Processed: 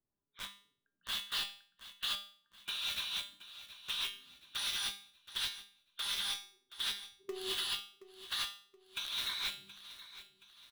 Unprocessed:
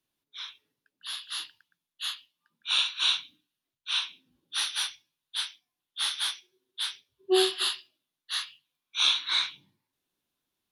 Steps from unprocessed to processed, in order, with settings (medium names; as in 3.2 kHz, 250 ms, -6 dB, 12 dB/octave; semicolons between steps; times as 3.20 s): level-controlled noise filter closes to 1 kHz, open at -26.5 dBFS; in parallel at -5 dB: companded quantiser 2-bit; on the sum: compressor with a negative ratio -28 dBFS, ratio -1; bass shelf 110 Hz +11.5 dB; feedback comb 200 Hz, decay 0.46 s, harmonics all, mix 80%; on a send: feedback delay 724 ms, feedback 43%, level -15 dB; on the sum: trim +1.5 dB